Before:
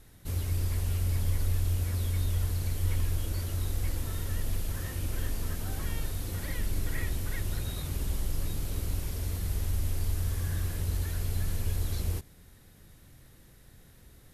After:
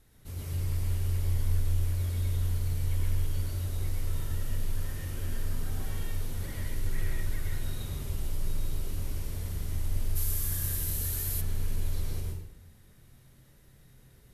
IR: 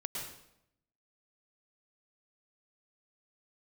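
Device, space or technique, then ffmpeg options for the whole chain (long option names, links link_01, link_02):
bathroom: -filter_complex "[1:a]atrim=start_sample=2205[link_01];[0:a][link_01]afir=irnorm=-1:irlink=0,asplit=3[link_02][link_03][link_04];[link_02]afade=type=out:start_time=10.15:duration=0.02[link_05];[link_03]aemphasis=mode=production:type=75fm,afade=type=in:start_time=10.15:duration=0.02,afade=type=out:start_time=11.4:duration=0.02[link_06];[link_04]afade=type=in:start_time=11.4:duration=0.02[link_07];[link_05][link_06][link_07]amix=inputs=3:normalize=0,volume=-4.5dB"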